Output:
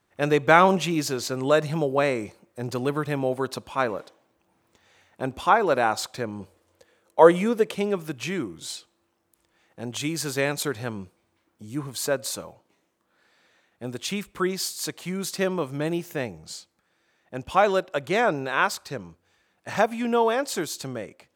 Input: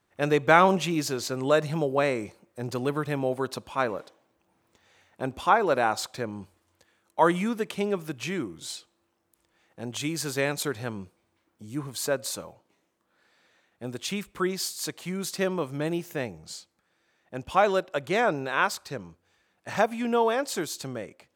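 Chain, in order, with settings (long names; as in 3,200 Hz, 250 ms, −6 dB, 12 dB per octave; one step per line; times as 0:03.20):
0:06.39–0:07.75: parametric band 500 Hz +10.5 dB 0.58 octaves
level +2 dB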